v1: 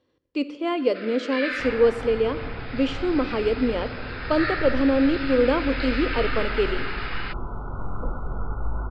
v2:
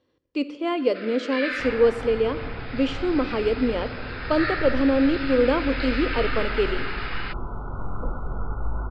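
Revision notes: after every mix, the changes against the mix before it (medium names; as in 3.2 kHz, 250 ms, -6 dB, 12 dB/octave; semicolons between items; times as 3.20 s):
no change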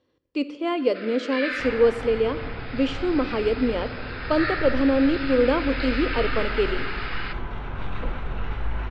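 second sound: remove brick-wall FIR low-pass 1.5 kHz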